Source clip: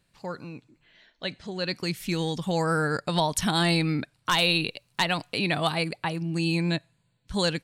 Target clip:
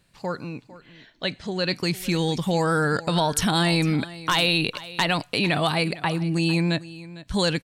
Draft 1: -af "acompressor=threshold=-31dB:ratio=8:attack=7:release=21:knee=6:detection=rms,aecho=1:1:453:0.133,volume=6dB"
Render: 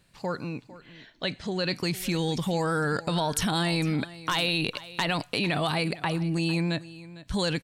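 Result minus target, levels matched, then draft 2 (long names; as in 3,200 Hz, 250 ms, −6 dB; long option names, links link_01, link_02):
downward compressor: peak gain reduction +5.5 dB
-af "acompressor=threshold=-24.5dB:ratio=8:attack=7:release=21:knee=6:detection=rms,aecho=1:1:453:0.133,volume=6dB"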